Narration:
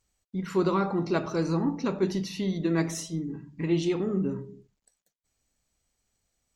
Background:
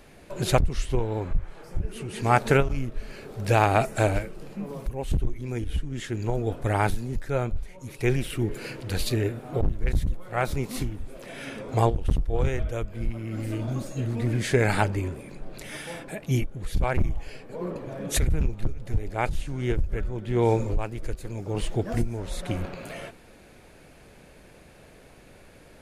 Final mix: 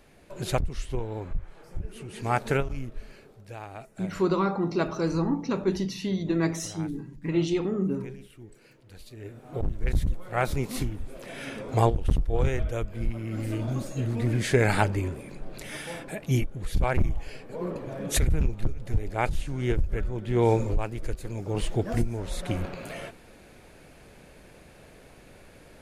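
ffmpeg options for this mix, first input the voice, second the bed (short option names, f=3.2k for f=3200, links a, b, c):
-filter_complex "[0:a]adelay=3650,volume=0.5dB[a];[1:a]volume=15dB,afade=t=out:st=2.99:d=0.45:silence=0.177828,afade=t=in:st=9.16:d=0.86:silence=0.0944061[b];[a][b]amix=inputs=2:normalize=0"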